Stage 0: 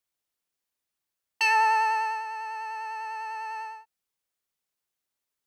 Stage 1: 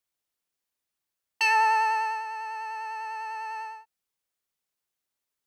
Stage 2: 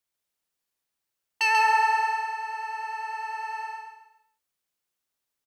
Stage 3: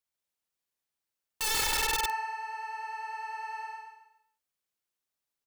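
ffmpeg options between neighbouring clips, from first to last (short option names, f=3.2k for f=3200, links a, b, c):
-af anull
-af "aecho=1:1:137|274|411|548:0.668|0.227|0.0773|0.0263"
-af "aeval=exprs='(mod(8.91*val(0)+1,2)-1)/8.91':c=same,volume=-5dB"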